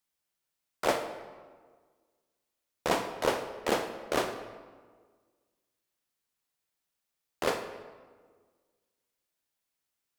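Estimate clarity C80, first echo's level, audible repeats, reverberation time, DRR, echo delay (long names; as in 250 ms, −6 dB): 10.5 dB, no echo audible, no echo audible, 1.6 s, 8.0 dB, no echo audible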